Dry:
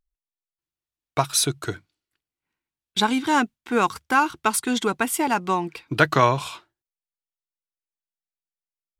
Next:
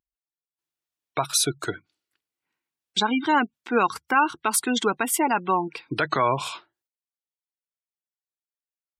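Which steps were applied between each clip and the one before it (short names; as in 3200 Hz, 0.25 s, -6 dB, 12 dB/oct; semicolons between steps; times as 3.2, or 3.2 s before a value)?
spectral gate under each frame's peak -25 dB strong; HPF 260 Hz 6 dB/oct; limiter -12.5 dBFS, peak gain reduction 10 dB; gain +2 dB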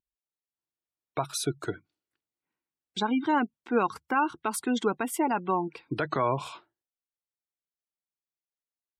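tilt shelf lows +5 dB, about 1200 Hz; gain -6.5 dB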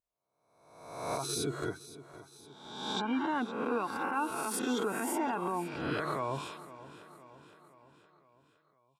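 spectral swells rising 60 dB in 0.96 s; limiter -18.5 dBFS, peak gain reduction 8.5 dB; feedback echo 0.514 s, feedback 55%, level -16 dB; gain -5.5 dB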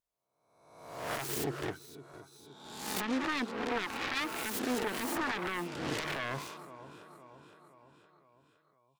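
self-modulated delay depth 0.46 ms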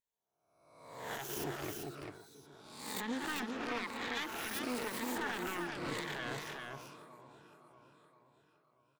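moving spectral ripple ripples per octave 1, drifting -1 Hz, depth 8 dB; echo 0.394 s -4.5 dB; on a send at -21 dB: reverb RT60 0.60 s, pre-delay 3 ms; on the sum: gain -6 dB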